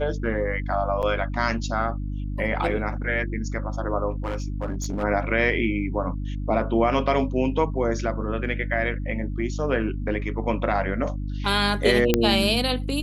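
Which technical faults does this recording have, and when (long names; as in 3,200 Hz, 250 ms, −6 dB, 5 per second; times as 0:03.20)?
mains hum 50 Hz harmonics 6 −29 dBFS
0:01.02–0:01.03: drop-out 8.1 ms
0:04.10–0:05.04: clipping −23 dBFS
0:12.14: click −4 dBFS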